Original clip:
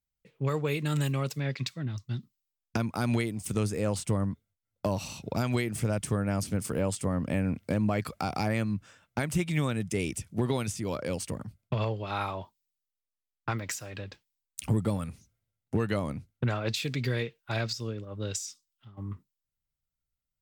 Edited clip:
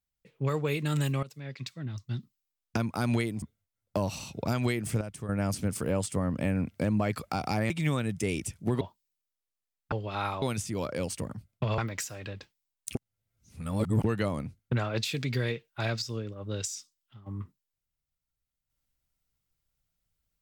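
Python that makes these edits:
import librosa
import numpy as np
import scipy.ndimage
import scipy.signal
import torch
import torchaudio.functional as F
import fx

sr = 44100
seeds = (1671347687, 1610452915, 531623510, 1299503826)

y = fx.edit(x, sr, fx.fade_in_from(start_s=1.23, length_s=0.94, floor_db=-17.0),
    fx.cut(start_s=3.42, length_s=0.89),
    fx.clip_gain(start_s=5.9, length_s=0.28, db=-9.5),
    fx.cut(start_s=8.59, length_s=0.82),
    fx.swap(start_s=10.52, length_s=1.36, other_s=12.38, other_length_s=1.11),
    fx.reverse_span(start_s=14.66, length_s=1.09), tone=tone)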